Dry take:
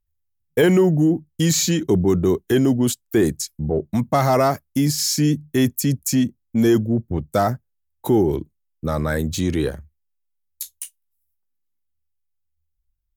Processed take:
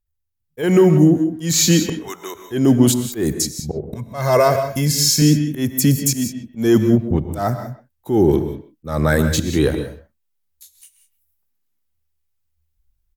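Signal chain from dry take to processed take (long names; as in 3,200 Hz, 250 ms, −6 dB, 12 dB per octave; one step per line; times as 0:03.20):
0:01.92–0:02.35: high-pass filter 1,300 Hz 12 dB per octave
0:03.78–0:05.22: comb filter 1.9 ms, depth 63%
volume swells 217 ms
automatic gain control gain up to 9 dB
far-end echo of a speakerphone 130 ms, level −14 dB
reverb whose tail is shaped and stops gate 210 ms rising, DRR 9 dB
level −1.5 dB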